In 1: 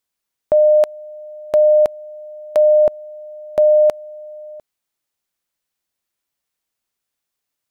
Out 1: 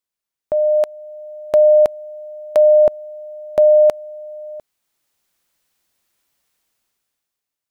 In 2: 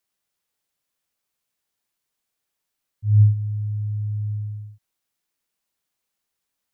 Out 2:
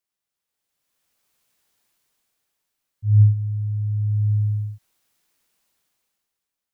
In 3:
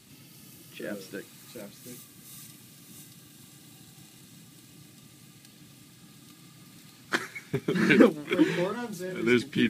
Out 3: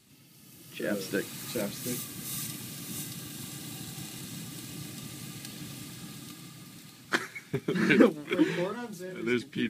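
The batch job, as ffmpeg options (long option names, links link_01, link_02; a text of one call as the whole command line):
ffmpeg -i in.wav -af "dynaudnorm=framelen=110:gausssize=17:maxgain=16.5dB,volume=-6dB" out.wav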